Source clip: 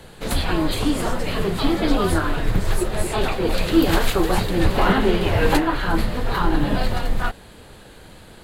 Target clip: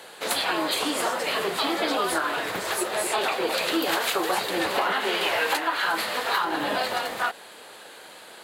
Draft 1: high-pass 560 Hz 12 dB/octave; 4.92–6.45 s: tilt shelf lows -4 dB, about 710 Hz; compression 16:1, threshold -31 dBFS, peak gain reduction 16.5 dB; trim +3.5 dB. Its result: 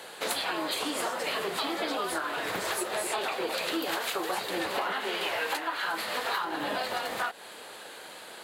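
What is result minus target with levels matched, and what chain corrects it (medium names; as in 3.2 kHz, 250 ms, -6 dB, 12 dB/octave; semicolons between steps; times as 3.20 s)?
compression: peak gain reduction +6.5 dB
high-pass 560 Hz 12 dB/octave; 4.92–6.45 s: tilt shelf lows -4 dB, about 710 Hz; compression 16:1, threshold -24 dBFS, peak gain reduction 9.5 dB; trim +3.5 dB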